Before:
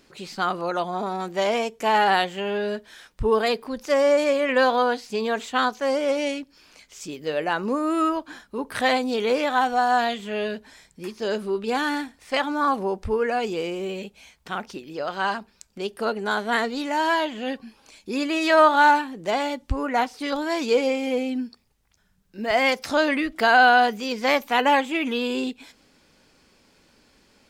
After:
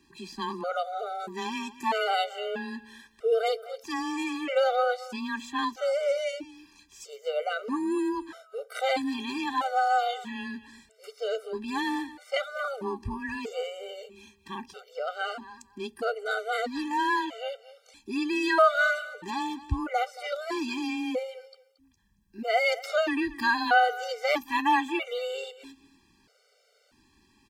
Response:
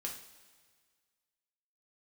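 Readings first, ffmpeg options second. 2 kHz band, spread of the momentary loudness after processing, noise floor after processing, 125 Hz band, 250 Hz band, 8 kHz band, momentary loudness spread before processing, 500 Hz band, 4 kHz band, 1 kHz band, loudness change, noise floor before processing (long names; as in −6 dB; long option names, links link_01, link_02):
−5.5 dB, 16 LU, −66 dBFS, −5.5 dB, −6.0 dB, −6.0 dB, 13 LU, −6.5 dB, −6.0 dB, −6.5 dB, −6.0 dB, −62 dBFS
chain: -af "aecho=1:1:227|454:0.141|0.0226,afreqshift=16,afftfilt=real='re*gt(sin(2*PI*0.78*pts/sr)*(1-2*mod(floor(b*sr/1024/390),2)),0)':imag='im*gt(sin(2*PI*0.78*pts/sr)*(1-2*mod(floor(b*sr/1024/390),2)),0)':win_size=1024:overlap=0.75,volume=-3dB"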